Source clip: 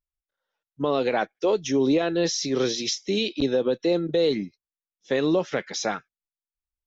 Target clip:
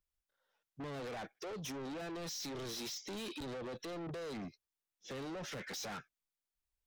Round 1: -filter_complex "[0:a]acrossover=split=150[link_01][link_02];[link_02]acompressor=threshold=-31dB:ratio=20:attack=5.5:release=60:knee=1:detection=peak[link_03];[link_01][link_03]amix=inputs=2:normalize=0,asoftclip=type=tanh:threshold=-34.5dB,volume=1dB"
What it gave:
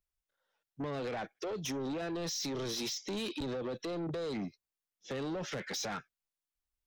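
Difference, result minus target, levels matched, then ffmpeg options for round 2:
soft clipping: distortion −5 dB
-filter_complex "[0:a]acrossover=split=150[link_01][link_02];[link_02]acompressor=threshold=-31dB:ratio=20:attack=5.5:release=60:knee=1:detection=peak[link_03];[link_01][link_03]amix=inputs=2:normalize=0,asoftclip=type=tanh:threshold=-42.5dB,volume=1dB"

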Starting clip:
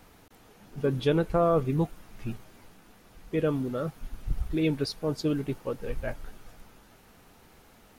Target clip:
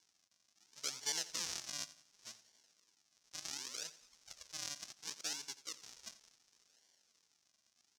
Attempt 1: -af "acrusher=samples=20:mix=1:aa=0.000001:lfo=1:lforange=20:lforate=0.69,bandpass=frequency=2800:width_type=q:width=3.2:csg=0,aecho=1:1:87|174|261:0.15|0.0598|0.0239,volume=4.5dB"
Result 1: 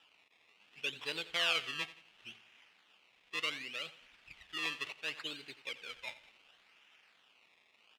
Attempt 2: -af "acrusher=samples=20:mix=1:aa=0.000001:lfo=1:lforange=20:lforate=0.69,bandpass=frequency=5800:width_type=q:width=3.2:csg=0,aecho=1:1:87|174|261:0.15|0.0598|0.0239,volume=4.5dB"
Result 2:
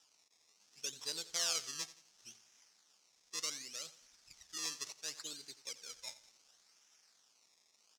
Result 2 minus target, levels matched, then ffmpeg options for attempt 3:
sample-and-hold swept by an LFO: distortion −13 dB
-af "acrusher=samples=68:mix=1:aa=0.000001:lfo=1:lforange=68:lforate=0.69,bandpass=frequency=5800:width_type=q:width=3.2:csg=0,aecho=1:1:87|174|261:0.15|0.0598|0.0239,volume=4.5dB"

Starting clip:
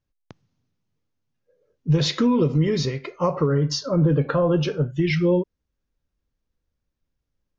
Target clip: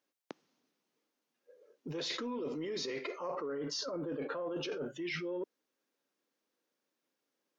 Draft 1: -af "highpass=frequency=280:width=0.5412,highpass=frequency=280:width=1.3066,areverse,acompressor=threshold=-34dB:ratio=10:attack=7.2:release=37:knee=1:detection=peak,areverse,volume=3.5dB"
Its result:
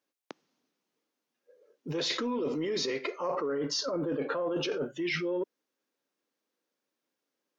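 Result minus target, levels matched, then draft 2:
downward compressor: peak gain reduction −7 dB
-af "highpass=frequency=280:width=0.5412,highpass=frequency=280:width=1.3066,areverse,acompressor=threshold=-41.5dB:ratio=10:attack=7.2:release=37:knee=1:detection=peak,areverse,volume=3.5dB"

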